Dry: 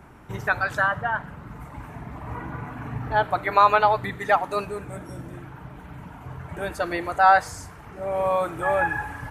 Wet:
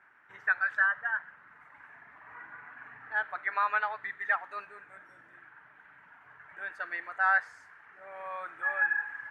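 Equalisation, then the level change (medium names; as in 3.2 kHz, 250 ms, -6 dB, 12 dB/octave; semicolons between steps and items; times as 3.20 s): band-pass filter 1.7 kHz, Q 4.4; 0.0 dB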